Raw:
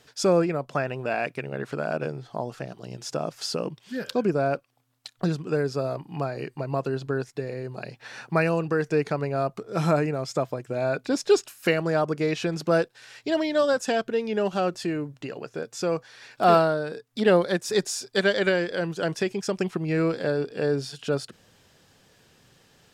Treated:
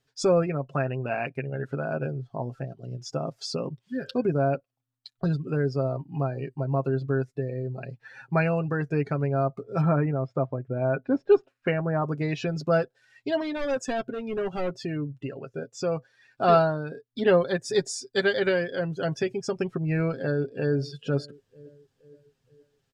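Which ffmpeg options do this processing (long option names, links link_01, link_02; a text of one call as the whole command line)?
ffmpeg -i in.wav -filter_complex "[0:a]asettb=1/sr,asplit=3[link_01][link_02][link_03];[link_01]atrim=end=9.814[link_04];[link_02]atrim=start=9.81:end=12.02,asetpts=PTS-STARTPTS,afade=type=in:duration=0.004:curve=qsin,afade=type=out:start_time=2.206:duration=0.004:curve=qsin,lowpass=2200[link_05];[link_03]atrim=start=12.016[link_06];[link_04][link_05]acrossfade=duration=0.004:curve1=hsin:curve2=qsin[link_07];[link_07][link_06]acrossfade=duration=0.004:curve1=qsin:curve2=hsin,asettb=1/sr,asplit=3[link_08][link_09][link_10];[link_08]atrim=end=13.414[link_11];[link_09]atrim=start=13.41:end=14.72,asetpts=PTS-STARTPTS,afade=type=in:duration=0.004:curve=qsin,afade=type=out:start_time=1.306:duration=0.004:curve=qsin,asoftclip=type=hard:threshold=-23.5dB[link_12];[link_10]atrim=start=14.716[link_13];[link_11][link_12]acrossfade=duration=0.004:curve1=hsin:curve2=qsin[link_14];[link_14][link_13]acrossfade=duration=0.004:curve1=qsin:curve2=hsin,asplit=2[link_15][link_16];[link_16]afade=type=in:start_time=20.24:duration=0.01,afade=type=out:start_time=20.74:duration=0.01,aecho=0:1:470|940|1410|1880|2350|2820:0.125893|0.0818302|0.0531896|0.0345732|0.0224726|0.0146072[link_17];[link_15][link_17]amix=inputs=2:normalize=0,afftdn=noise_reduction=17:noise_floor=-39,lowshelf=frequency=120:gain=11,aecho=1:1:7.5:0.52,volume=-3.5dB" out.wav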